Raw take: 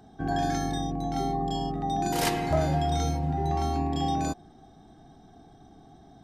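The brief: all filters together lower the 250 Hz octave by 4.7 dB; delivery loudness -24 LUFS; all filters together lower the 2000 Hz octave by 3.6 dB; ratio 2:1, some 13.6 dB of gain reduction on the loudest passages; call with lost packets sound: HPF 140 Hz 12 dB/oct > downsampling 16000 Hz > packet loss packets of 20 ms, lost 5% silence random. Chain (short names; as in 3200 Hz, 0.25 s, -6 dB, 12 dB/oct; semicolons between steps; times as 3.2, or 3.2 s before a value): bell 250 Hz -5.5 dB; bell 2000 Hz -4.5 dB; compressor 2:1, threshold -47 dBFS; HPF 140 Hz 12 dB/oct; downsampling 16000 Hz; packet loss packets of 20 ms, lost 5% silence random; gain +18.5 dB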